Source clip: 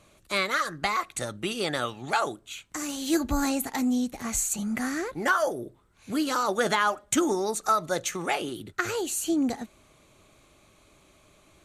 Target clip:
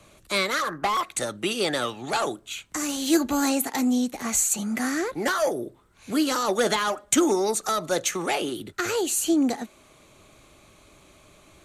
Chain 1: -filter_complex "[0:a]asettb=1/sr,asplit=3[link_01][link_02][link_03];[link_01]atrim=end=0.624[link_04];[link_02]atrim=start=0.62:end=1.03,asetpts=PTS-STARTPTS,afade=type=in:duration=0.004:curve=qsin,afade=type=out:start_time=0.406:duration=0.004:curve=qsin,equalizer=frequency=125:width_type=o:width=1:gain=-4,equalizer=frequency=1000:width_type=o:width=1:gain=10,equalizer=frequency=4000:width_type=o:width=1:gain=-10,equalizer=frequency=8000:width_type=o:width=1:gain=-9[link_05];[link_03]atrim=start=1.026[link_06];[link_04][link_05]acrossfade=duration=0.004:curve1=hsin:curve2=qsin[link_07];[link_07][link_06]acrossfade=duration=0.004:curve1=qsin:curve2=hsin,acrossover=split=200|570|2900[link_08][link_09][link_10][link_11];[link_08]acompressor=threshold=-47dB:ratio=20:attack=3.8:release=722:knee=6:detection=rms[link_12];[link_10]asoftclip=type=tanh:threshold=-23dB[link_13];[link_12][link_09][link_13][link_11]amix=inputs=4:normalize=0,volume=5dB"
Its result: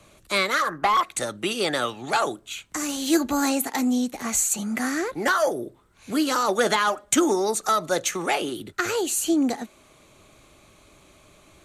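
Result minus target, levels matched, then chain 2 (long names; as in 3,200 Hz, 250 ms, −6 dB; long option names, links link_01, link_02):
soft clipping: distortion −6 dB
-filter_complex "[0:a]asettb=1/sr,asplit=3[link_01][link_02][link_03];[link_01]atrim=end=0.624[link_04];[link_02]atrim=start=0.62:end=1.03,asetpts=PTS-STARTPTS,afade=type=in:duration=0.004:curve=qsin,afade=type=out:start_time=0.406:duration=0.004:curve=qsin,equalizer=frequency=125:width_type=o:width=1:gain=-4,equalizer=frequency=1000:width_type=o:width=1:gain=10,equalizer=frequency=4000:width_type=o:width=1:gain=-10,equalizer=frequency=8000:width_type=o:width=1:gain=-9[link_05];[link_03]atrim=start=1.026[link_06];[link_04][link_05]acrossfade=duration=0.004:curve1=hsin:curve2=qsin[link_07];[link_07][link_06]acrossfade=duration=0.004:curve1=qsin:curve2=hsin,acrossover=split=200|570|2900[link_08][link_09][link_10][link_11];[link_08]acompressor=threshold=-47dB:ratio=20:attack=3.8:release=722:knee=6:detection=rms[link_12];[link_10]asoftclip=type=tanh:threshold=-30.5dB[link_13];[link_12][link_09][link_13][link_11]amix=inputs=4:normalize=0,volume=5dB"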